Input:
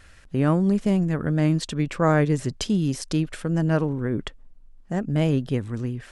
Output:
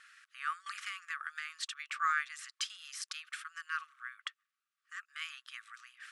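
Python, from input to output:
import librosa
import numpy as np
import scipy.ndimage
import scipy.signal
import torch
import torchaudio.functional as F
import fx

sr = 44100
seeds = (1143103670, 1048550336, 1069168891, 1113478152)

y = fx.brickwall_highpass(x, sr, low_hz=1100.0)
y = fx.high_shelf(y, sr, hz=3300.0, db=-7.0)
y = fx.band_squash(y, sr, depth_pct=100, at=(0.66, 1.5))
y = y * 10.0 ** (-1.5 / 20.0)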